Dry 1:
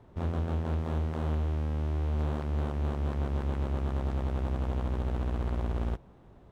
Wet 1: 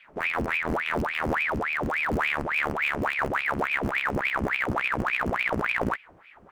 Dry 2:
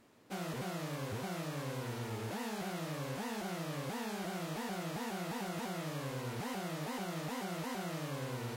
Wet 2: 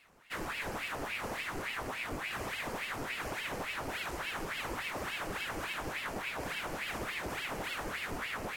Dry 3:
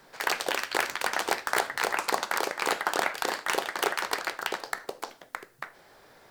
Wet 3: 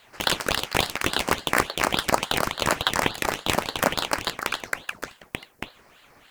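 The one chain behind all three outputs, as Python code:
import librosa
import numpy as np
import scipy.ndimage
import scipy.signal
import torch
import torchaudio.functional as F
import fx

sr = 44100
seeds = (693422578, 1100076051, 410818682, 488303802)

p1 = np.where(np.abs(x) >= 10.0 ** (-25.5 / 20.0), x, 0.0)
p2 = x + (p1 * librosa.db_to_amplitude(-5.5))
p3 = fx.peak_eq(p2, sr, hz=3600.0, db=-14.0, octaves=0.27)
p4 = fx.ring_lfo(p3, sr, carrier_hz=1300.0, swing_pct=90, hz=3.5)
y = p4 * librosa.db_to_amplitude(4.5)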